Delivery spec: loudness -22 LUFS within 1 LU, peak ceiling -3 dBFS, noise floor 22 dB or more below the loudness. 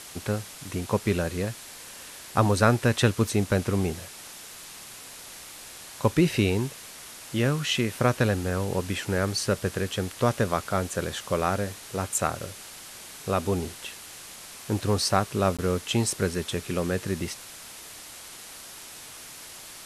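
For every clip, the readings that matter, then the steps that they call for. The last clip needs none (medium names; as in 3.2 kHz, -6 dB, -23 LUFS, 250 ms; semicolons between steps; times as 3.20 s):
dropouts 1; longest dropout 16 ms; noise floor -44 dBFS; noise floor target -49 dBFS; loudness -26.5 LUFS; peak level -5.5 dBFS; loudness target -22.0 LUFS
-> interpolate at 15.57 s, 16 ms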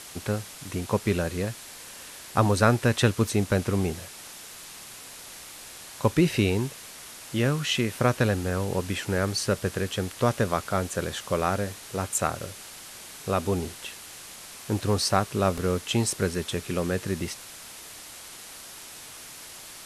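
dropouts 0; noise floor -44 dBFS; noise floor target -49 dBFS
-> noise reduction 6 dB, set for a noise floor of -44 dBFS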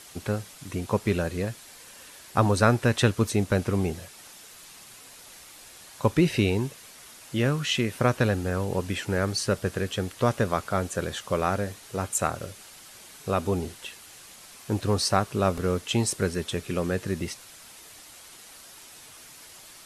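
noise floor -48 dBFS; noise floor target -49 dBFS
-> noise reduction 6 dB, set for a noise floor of -48 dBFS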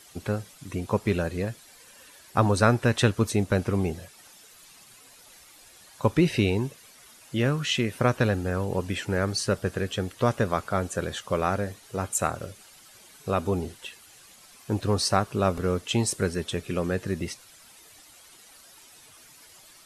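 noise floor -53 dBFS; loudness -27.0 LUFS; peak level -6.0 dBFS; loudness target -22.0 LUFS
-> trim +5 dB; peak limiter -3 dBFS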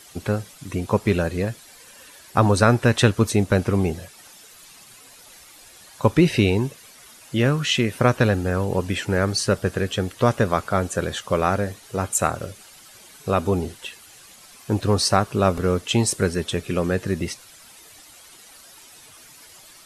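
loudness -22.0 LUFS; peak level -3.0 dBFS; noise floor -48 dBFS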